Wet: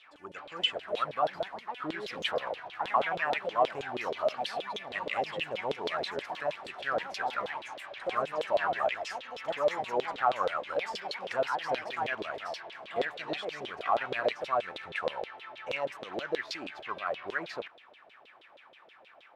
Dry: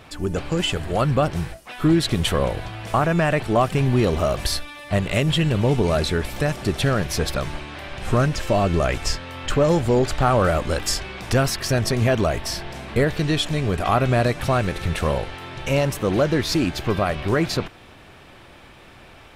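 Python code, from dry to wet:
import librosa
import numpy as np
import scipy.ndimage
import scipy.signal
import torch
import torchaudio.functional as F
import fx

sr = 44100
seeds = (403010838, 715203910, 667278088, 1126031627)

y = fx.echo_pitch(x, sr, ms=471, semitones=4, count=2, db_per_echo=-6.0)
y = fx.filter_lfo_bandpass(y, sr, shape='saw_down', hz=6.3, low_hz=470.0, high_hz=3700.0, q=4.6)
y = fx.low_shelf(y, sr, hz=150.0, db=-7.0)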